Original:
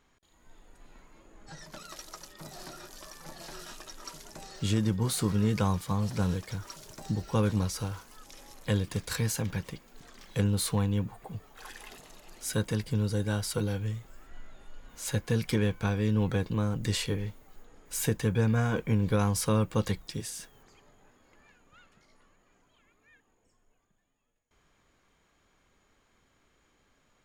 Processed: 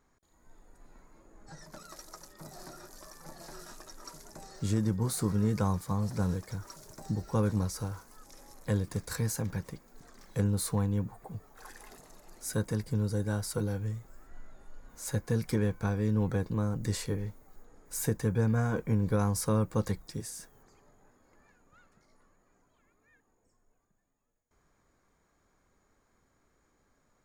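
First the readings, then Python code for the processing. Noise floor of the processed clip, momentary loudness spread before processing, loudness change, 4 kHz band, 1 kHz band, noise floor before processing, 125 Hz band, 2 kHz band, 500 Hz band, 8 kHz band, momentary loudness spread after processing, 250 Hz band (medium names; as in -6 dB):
-72 dBFS, 18 LU, -1.5 dB, -7.5 dB, -2.5 dB, -70 dBFS, -1.5 dB, -5.0 dB, -1.5 dB, -2.5 dB, 20 LU, -1.5 dB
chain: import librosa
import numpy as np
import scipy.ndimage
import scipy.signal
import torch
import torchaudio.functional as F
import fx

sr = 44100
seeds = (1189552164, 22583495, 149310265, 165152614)

y = fx.peak_eq(x, sr, hz=3000.0, db=-13.0, octaves=0.83)
y = y * librosa.db_to_amplitude(-1.5)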